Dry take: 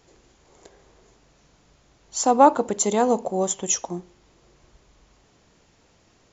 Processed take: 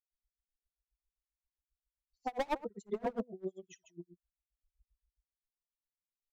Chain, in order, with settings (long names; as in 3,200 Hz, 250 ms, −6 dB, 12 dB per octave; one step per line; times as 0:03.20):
spectral dynamics exaggerated over time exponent 3
0:02.51–0:03.34: dynamic equaliser 200 Hz, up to +8 dB, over −43 dBFS, Q 1.9
low-pass filter 1,400 Hz 12 dB per octave
parametric band 110 Hz −11 dB 1.5 octaves
loudspeakers that aren't time-aligned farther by 20 metres −3 dB, 55 metres −9 dB
gain into a clipping stage and back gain 22 dB
tremolo with a sine in dB 7.5 Hz, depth 32 dB
level −4 dB